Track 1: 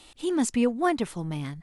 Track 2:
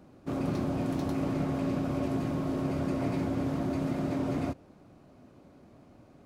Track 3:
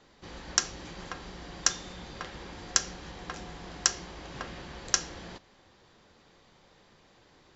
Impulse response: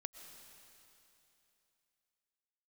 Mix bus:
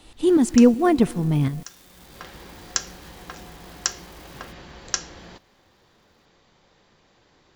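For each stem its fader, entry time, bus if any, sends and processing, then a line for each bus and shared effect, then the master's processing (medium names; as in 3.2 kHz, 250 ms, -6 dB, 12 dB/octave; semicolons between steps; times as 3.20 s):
+2.0 dB, 0.00 s, send -6.5 dB, bass shelf 470 Hz +11 dB; tremolo saw up 2.7 Hz, depth 60%
-14.0 dB, 0.00 s, no send, square wave that keeps the level; differentiator
+0.5 dB, 0.00 s, no send, auto duck -18 dB, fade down 1.60 s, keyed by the first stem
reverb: on, RT60 3.0 s, pre-delay 80 ms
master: none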